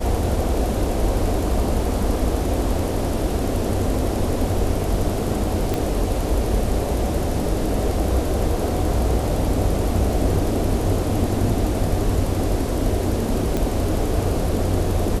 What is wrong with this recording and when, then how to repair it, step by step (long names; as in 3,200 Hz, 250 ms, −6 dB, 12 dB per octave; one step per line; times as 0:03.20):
0:05.74: click
0:13.57: click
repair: click removal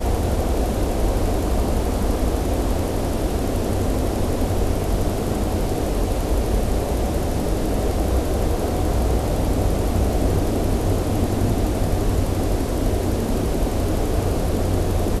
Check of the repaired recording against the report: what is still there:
none of them is left